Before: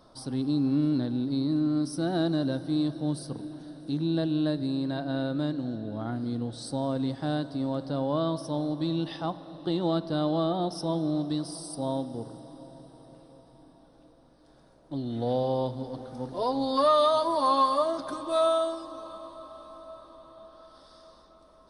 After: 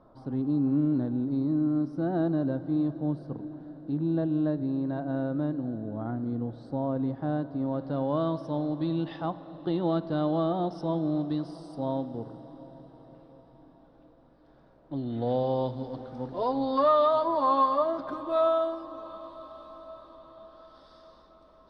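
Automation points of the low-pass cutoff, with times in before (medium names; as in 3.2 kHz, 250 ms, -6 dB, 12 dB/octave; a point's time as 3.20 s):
7.50 s 1.3 kHz
8.07 s 2.5 kHz
14.95 s 2.5 kHz
15.78 s 4.1 kHz
16.99 s 2.2 kHz
18.84 s 2.2 kHz
19.44 s 3.9 kHz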